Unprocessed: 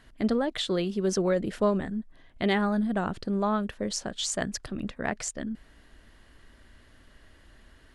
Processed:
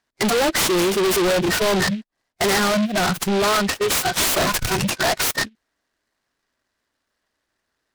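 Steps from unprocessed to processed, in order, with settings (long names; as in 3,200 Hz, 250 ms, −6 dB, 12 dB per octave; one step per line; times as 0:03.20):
0:04.20–0:04.76: each half-wave held at its own peak
noise reduction from a noise print of the clip's start 27 dB
noise gate −50 dBFS, range −23 dB
in parallel at +0.5 dB: downward compressor, threshold −33 dBFS, peak gain reduction 12.5 dB
on the sum: mid-hump overdrive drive 29 dB, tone 3,900 Hz, clips at −10.5 dBFS
0:02.58–0:03.44: parametric band 1,000 Hz −8.5 dB 0.64 octaves
soft clipping −24.5 dBFS, distortion −10 dB
short delay modulated by noise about 2,600 Hz, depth 0.076 ms
level +7.5 dB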